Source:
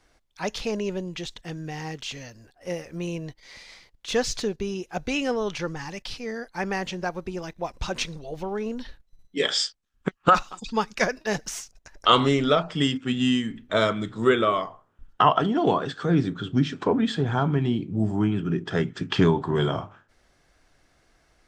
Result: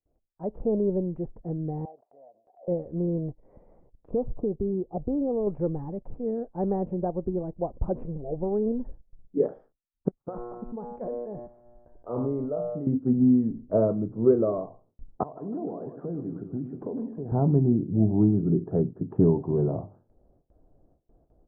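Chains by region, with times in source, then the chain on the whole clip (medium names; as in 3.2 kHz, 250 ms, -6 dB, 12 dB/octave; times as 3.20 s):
1.85–2.68 s: ladder band-pass 740 Hz, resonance 75% + swell ahead of each attack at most 64 dB/s
4.10–5.47 s: brick-wall FIR low-pass 1.3 kHz + compression 3:1, threshold -27 dBFS
10.22–12.87 s: bass shelf 290 Hz -5 dB + feedback comb 120 Hz, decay 1.1 s, mix 80% + decay stretcher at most 23 dB/s
15.23–17.32 s: frequency weighting D + compression 16:1, threshold -31 dBFS + two-band feedback delay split 690 Hz, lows 103 ms, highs 153 ms, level -9 dB
whole clip: inverse Chebyshev low-pass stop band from 3.8 kHz, stop band 80 dB; gate with hold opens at -56 dBFS; level rider gain up to 11.5 dB; trim -7.5 dB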